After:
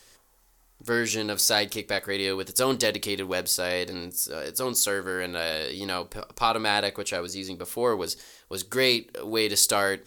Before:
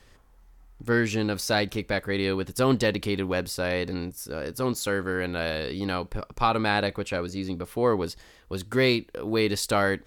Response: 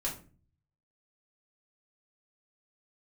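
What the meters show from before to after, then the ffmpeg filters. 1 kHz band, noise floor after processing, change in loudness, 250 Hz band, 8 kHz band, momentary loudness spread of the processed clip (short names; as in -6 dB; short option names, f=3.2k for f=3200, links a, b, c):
-0.5 dB, -61 dBFS, +1.0 dB, -5.0 dB, +11.0 dB, 11 LU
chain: -filter_complex "[0:a]bass=f=250:g=-10,treble=f=4k:g=13,asplit=2[a][b];[1:a]atrim=start_sample=2205,asetrate=66150,aresample=44100[c];[b][c]afir=irnorm=-1:irlink=0,volume=-15dB[d];[a][d]amix=inputs=2:normalize=0,volume=-1.5dB"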